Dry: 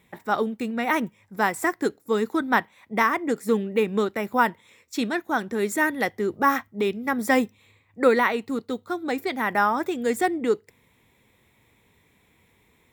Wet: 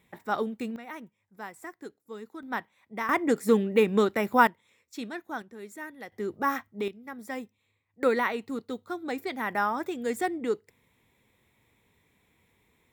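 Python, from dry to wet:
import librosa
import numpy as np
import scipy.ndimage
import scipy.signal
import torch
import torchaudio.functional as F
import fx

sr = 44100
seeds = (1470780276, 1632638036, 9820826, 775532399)

y = fx.gain(x, sr, db=fx.steps((0.0, -5.0), (0.76, -18.0), (2.43, -11.5), (3.09, 0.5), (4.47, -11.0), (5.42, -18.0), (6.12, -7.0), (6.88, -16.0), (8.03, -6.0)))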